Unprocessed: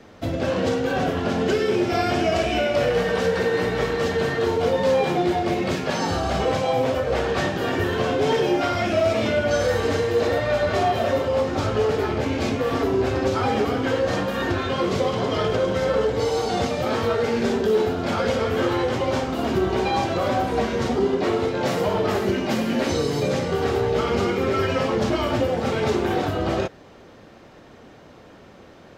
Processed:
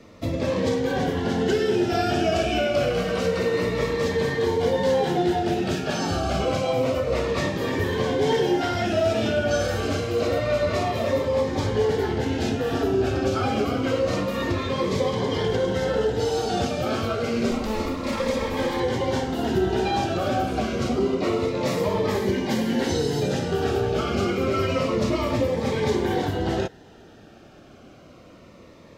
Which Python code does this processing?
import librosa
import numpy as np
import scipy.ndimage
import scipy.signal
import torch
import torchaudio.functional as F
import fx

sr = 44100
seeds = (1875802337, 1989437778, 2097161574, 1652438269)

y = fx.lower_of_two(x, sr, delay_ms=3.7, at=(17.51, 18.8))
y = fx.notch_cascade(y, sr, direction='falling', hz=0.28)